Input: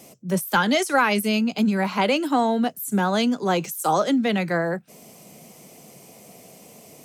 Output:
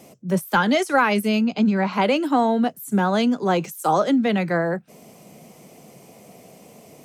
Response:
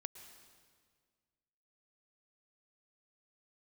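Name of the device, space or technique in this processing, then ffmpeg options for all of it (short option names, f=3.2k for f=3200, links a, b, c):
behind a face mask: -filter_complex "[0:a]highshelf=f=3.1k:g=-7.5,asettb=1/sr,asplit=3[a][b][c];[a]atrim=end=1.464[d];[b]atrim=start=1.46:end=1.93,asetpts=PTS-STARTPTS,afade=t=in:d=0.004:c=qsin,afade=t=out:st=0.466:d=0.004:c=qsin,lowpass=f=6.9k:w=0.5412,lowpass=f=6.9k:w=1.3066[e];[c]atrim=start=1.926[f];[d][e]acrossfade=d=0.004:c1=hsin:c2=qsin[g];[g][f]acrossfade=d=0.004:c1=qsin:c2=hsin,volume=2dB"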